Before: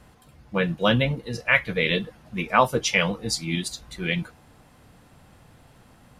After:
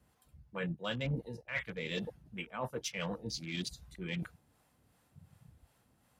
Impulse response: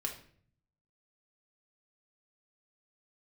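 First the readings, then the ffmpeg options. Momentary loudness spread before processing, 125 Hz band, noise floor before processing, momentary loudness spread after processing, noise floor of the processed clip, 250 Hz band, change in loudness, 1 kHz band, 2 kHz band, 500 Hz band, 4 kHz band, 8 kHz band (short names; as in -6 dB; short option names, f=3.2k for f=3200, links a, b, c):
10 LU, -12.0 dB, -55 dBFS, 8 LU, -72 dBFS, -13.0 dB, -15.5 dB, -20.0 dB, -17.0 dB, -15.5 dB, -14.0 dB, -13.5 dB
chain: -filter_complex "[0:a]highpass=f=40:w=0.5412,highpass=f=40:w=1.3066,afwtdn=0.0178,highshelf=f=8.1k:g=10.5,areverse,acompressor=threshold=-33dB:ratio=8,areverse,acrossover=split=480[a][b];[a]aeval=exprs='val(0)*(1-0.5/2+0.5/2*cos(2*PI*2.7*n/s))':c=same[c];[b]aeval=exprs='val(0)*(1-0.5/2-0.5/2*cos(2*PI*2.7*n/s))':c=same[d];[c][d]amix=inputs=2:normalize=0,volume=1dB"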